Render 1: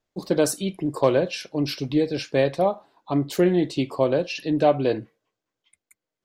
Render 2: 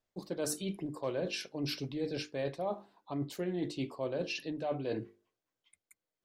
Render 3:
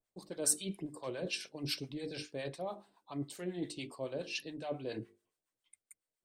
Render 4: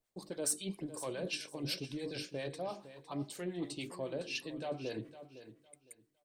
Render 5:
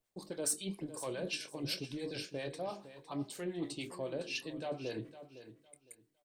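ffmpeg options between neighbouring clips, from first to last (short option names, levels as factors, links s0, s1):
-af "bandreject=f=50:t=h:w=6,bandreject=f=100:t=h:w=6,bandreject=f=150:t=h:w=6,bandreject=f=200:t=h:w=6,bandreject=f=250:t=h:w=6,bandreject=f=300:t=h:w=6,bandreject=f=350:t=h:w=6,bandreject=f=400:t=h:w=6,bandreject=f=450:t=h:w=6,areverse,acompressor=threshold=0.0447:ratio=6,areverse,volume=0.531"
-filter_complex "[0:a]equalizer=f=8600:w=4.7:g=12.5,acrossover=split=790[s0][s1];[s0]aeval=exprs='val(0)*(1-0.7/2+0.7/2*cos(2*PI*7.2*n/s))':c=same[s2];[s1]aeval=exprs='val(0)*(1-0.7/2-0.7/2*cos(2*PI*7.2*n/s))':c=same[s3];[s2][s3]amix=inputs=2:normalize=0,adynamicequalizer=threshold=0.00158:dfrequency=1900:dqfactor=0.7:tfrequency=1900:tqfactor=0.7:attack=5:release=100:ratio=0.375:range=2.5:mode=boostabove:tftype=highshelf,volume=0.841"
-filter_complex "[0:a]asplit=2[s0][s1];[s1]acompressor=threshold=0.00631:ratio=6,volume=1.12[s2];[s0][s2]amix=inputs=2:normalize=0,asoftclip=type=tanh:threshold=0.0891,aecho=1:1:508|1016|1524:0.211|0.0465|0.0102,volume=0.708"
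-filter_complex "[0:a]asplit=2[s0][s1];[s1]adelay=25,volume=0.224[s2];[s0][s2]amix=inputs=2:normalize=0"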